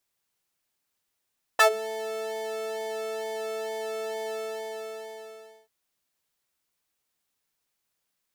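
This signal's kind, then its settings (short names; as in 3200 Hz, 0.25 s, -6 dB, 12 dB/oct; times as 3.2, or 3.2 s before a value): synth patch with pulse-width modulation A4, oscillator 2 sine, interval +7 st, detune 6 cents, oscillator 2 level -1.5 dB, sub -25 dB, noise -24 dB, filter highpass, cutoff 110 Hz, Q 2.3, filter envelope 4 oct, filter decay 0.19 s, filter sustain 10%, attack 14 ms, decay 0.09 s, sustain -22 dB, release 1.38 s, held 2.71 s, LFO 2.2 Hz, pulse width 39%, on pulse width 7%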